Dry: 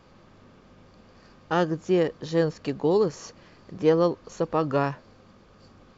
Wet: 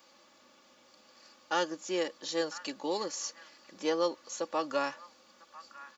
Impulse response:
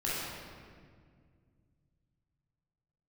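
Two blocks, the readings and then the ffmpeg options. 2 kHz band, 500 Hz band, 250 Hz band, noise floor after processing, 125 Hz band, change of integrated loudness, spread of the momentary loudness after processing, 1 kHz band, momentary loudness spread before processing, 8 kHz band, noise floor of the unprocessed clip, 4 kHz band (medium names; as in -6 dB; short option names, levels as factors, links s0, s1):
-3.0 dB, -9.5 dB, -11.5 dB, -62 dBFS, -26.0 dB, -8.5 dB, 19 LU, -5.0 dB, 8 LU, no reading, -55 dBFS, +2.5 dB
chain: -filter_complex "[0:a]aderivative,aecho=1:1:3.5:0.62,acrossover=split=130|990|1800[s0][s1][s2][s3];[s1]acontrast=83[s4];[s2]aecho=1:1:999:0.531[s5];[s0][s4][s5][s3]amix=inputs=4:normalize=0,volume=2.11"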